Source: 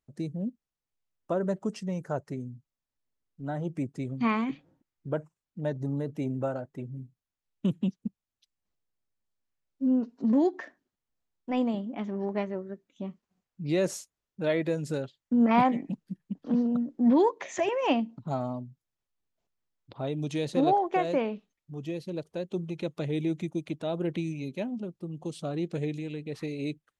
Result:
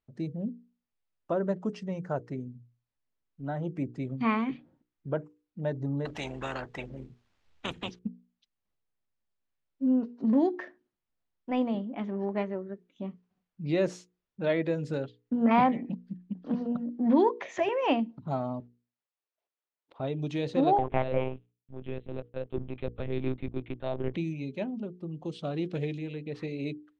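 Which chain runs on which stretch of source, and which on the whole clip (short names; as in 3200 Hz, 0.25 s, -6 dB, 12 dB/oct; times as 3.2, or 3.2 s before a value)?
6.05–7.99 AM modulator 81 Hz, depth 20% + spectral compressor 4:1
18.6–20 HPF 380 Hz 24 dB/oct + sample leveller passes 2 + compressor 3:1, threshold -58 dBFS
20.78–24.14 G.711 law mismatch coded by A + monotone LPC vocoder at 8 kHz 130 Hz
25.34–25.98 block floating point 7-bit + bell 3200 Hz +4.5 dB 0.8 oct
whole clip: LPF 3900 Hz 12 dB/oct; notches 60/120/180/240/300/360/420/480 Hz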